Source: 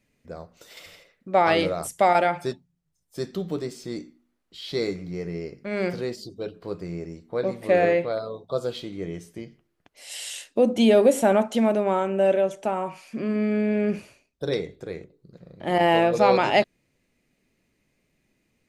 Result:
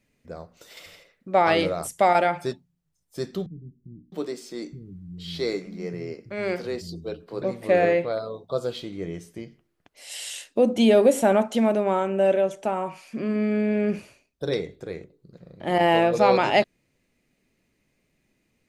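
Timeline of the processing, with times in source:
3.46–7.42 bands offset in time lows, highs 0.66 s, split 190 Hz

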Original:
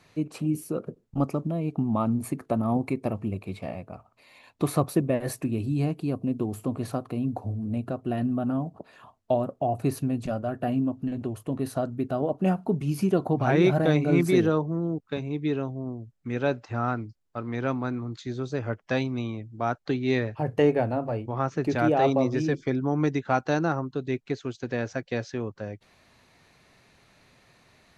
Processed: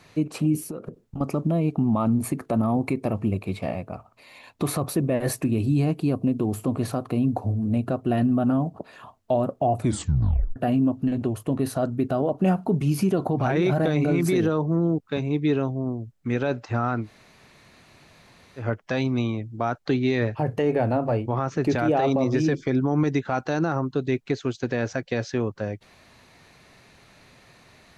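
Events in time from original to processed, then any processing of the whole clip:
0.58–1.21 compressor 10:1, threshold -35 dBFS
9.78 tape stop 0.78 s
17.05–18.61 room tone, crossfade 0.10 s
whole clip: limiter -19.5 dBFS; gain +6 dB

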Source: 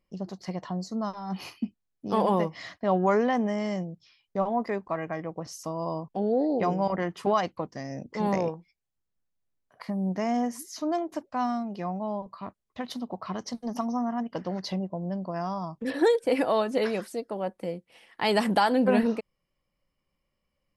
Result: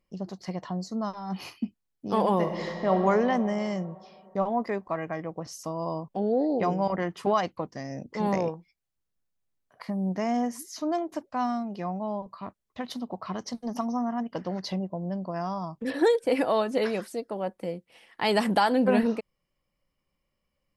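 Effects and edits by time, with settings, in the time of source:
2.35–2.94 reverb throw, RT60 3 s, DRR 2.5 dB

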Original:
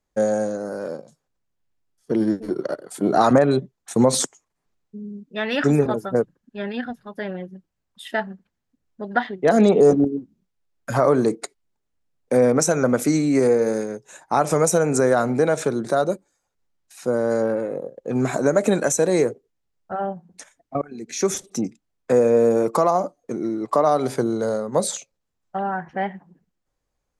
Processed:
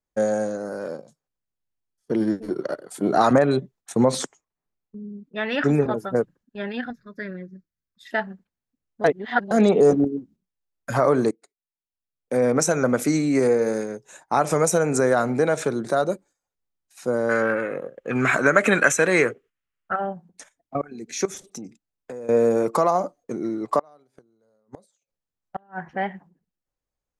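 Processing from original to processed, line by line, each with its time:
3.92–6 high shelf 4900 Hz -9.5 dB
6.9–8.11 fixed phaser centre 3000 Hz, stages 6
9.04–9.51 reverse
11.31–12.57 fade in quadratic, from -23 dB
17.29–19.96 band shelf 1900 Hz +12.5 dB
21.25–22.29 compressor, threshold -31 dBFS
23.79–25.88 flipped gate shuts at -18 dBFS, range -32 dB
whole clip: gate -46 dBFS, range -8 dB; dynamic EQ 2000 Hz, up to +3 dB, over -38 dBFS, Q 0.82; gain -2 dB

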